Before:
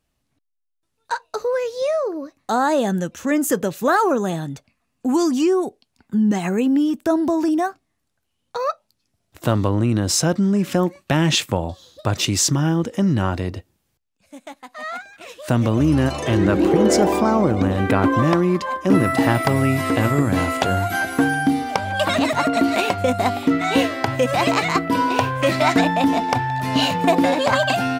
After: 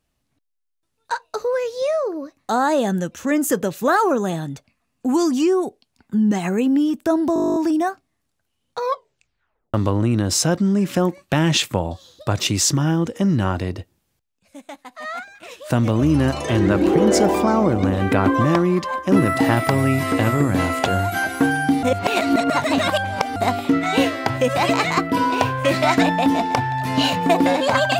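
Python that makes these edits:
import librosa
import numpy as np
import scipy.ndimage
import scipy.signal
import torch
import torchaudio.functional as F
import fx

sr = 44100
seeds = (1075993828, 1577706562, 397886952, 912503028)

y = fx.edit(x, sr, fx.stutter(start_s=7.34, slice_s=0.02, count=12),
    fx.tape_stop(start_s=8.59, length_s=0.93),
    fx.reverse_span(start_s=21.61, length_s=1.53), tone=tone)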